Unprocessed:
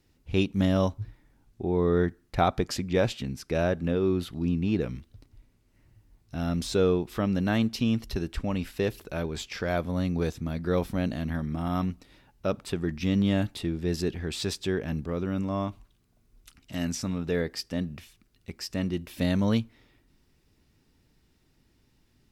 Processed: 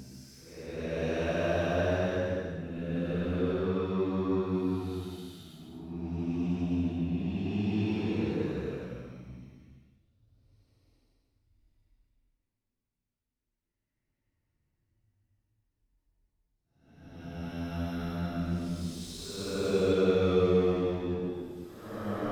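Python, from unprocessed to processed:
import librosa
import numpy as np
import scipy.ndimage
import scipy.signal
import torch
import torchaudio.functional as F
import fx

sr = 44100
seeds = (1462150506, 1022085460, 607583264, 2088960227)

y = fx.power_curve(x, sr, exponent=1.4)
y = fx.paulstretch(y, sr, seeds[0], factor=5.8, window_s=0.25, from_s=3.35)
y = fx.hum_notches(y, sr, base_hz=60, count=2)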